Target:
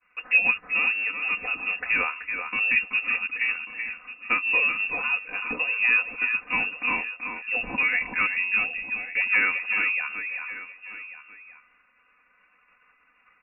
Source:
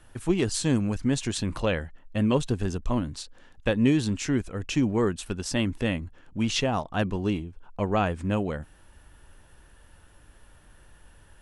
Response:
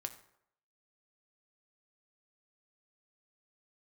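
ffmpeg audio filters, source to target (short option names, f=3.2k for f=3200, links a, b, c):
-filter_complex "[0:a]atempo=0.85,highpass=270,asplit=2[a][b];[b]adelay=380,highpass=300,lowpass=3.4k,asoftclip=type=hard:threshold=-19dB,volume=-7dB[c];[a][c]amix=inputs=2:normalize=0,asplit=2[d][e];[e]acompressor=threshold=-40dB:ratio=6,volume=-0.5dB[f];[d][f]amix=inputs=2:normalize=0,lowpass=f=2.5k:t=q:w=0.5098,lowpass=f=2.5k:t=q:w=0.6013,lowpass=f=2.5k:t=q:w=0.9,lowpass=f=2.5k:t=q:w=2.563,afreqshift=-2900,agate=range=-33dB:threshold=-48dB:ratio=3:detection=peak,aecho=1:1:4:0.99,asplit=2[g][h];[h]aecho=0:1:1141:0.178[i];[g][i]amix=inputs=2:normalize=0"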